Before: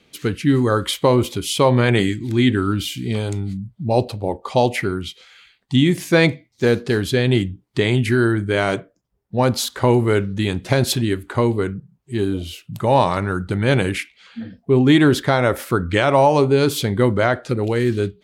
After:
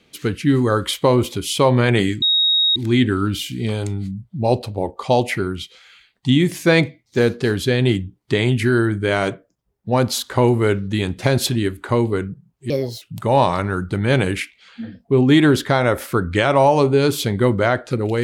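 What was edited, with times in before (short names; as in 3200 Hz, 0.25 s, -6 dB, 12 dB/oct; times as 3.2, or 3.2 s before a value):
2.22 add tone 3770 Hz -13 dBFS 0.54 s
12.16–12.6 speed 138%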